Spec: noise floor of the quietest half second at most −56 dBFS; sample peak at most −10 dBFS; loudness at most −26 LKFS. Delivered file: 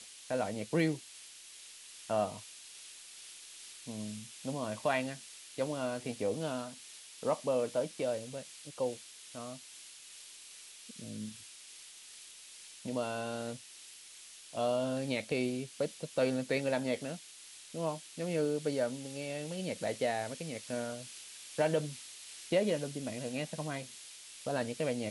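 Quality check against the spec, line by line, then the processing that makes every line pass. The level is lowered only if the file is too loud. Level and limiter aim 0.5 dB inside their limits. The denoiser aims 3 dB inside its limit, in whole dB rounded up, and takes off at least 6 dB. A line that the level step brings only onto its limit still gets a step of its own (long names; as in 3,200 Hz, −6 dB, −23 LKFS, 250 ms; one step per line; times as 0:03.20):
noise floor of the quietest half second −53 dBFS: out of spec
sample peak −17.5 dBFS: in spec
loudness −36.5 LKFS: in spec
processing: broadband denoise 6 dB, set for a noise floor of −53 dBFS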